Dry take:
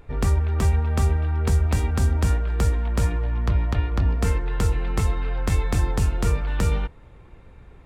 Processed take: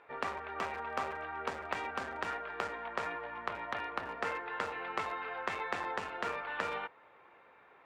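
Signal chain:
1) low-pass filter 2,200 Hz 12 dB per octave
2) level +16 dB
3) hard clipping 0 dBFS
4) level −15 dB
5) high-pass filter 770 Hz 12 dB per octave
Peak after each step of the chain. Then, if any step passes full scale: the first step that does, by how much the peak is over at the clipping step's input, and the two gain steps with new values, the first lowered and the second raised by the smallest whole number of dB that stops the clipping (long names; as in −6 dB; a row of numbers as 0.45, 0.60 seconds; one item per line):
−11.5, +4.5, 0.0, −15.0, −17.5 dBFS
step 2, 4.5 dB
step 2 +11 dB, step 4 −10 dB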